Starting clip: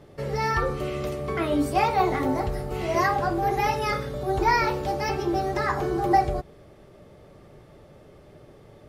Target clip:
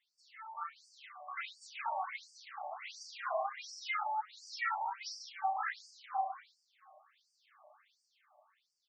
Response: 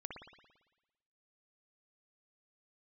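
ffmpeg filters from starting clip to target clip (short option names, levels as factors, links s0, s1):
-filter_complex "[0:a]lowshelf=f=470:t=q:w=1.5:g=-10,dynaudnorm=f=220:g=11:m=3.76,alimiter=limit=0.299:level=0:latency=1:release=30,flanger=delay=8.1:depth=2.6:regen=35:speed=0.26:shape=sinusoidal,volume=7.08,asoftclip=hard,volume=0.141,acrossover=split=810[s0][s1];[s0]adelay=360[s2];[s2][s1]amix=inputs=2:normalize=0[s3];[1:a]atrim=start_sample=2205,asetrate=79380,aresample=44100[s4];[s3][s4]afir=irnorm=-1:irlink=0,afftfilt=real='re*between(b*sr/1024,800*pow(6500/800,0.5+0.5*sin(2*PI*1.4*pts/sr))/1.41,800*pow(6500/800,0.5+0.5*sin(2*PI*1.4*pts/sr))*1.41)':imag='im*between(b*sr/1024,800*pow(6500/800,0.5+0.5*sin(2*PI*1.4*pts/sr))/1.41,800*pow(6500/800,0.5+0.5*sin(2*PI*1.4*pts/sr))*1.41)':win_size=1024:overlap=0.75,volume=1.19"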